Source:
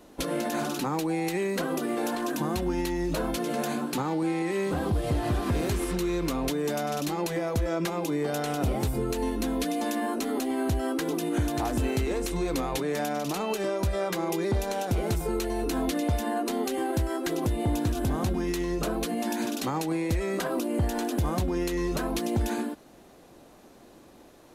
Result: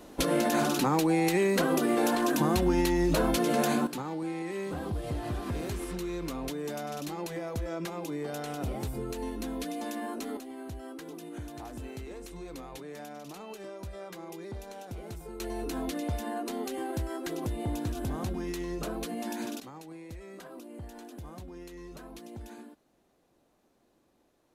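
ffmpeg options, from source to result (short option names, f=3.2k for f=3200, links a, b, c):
-af "asetnsamples=n=441:p=0,asendcmd='3.87 volume volume -7dB;10.37 volume volume -14dB;15.4 volume volume -6dB;19.6 volume volume -17dB',volume=3dB"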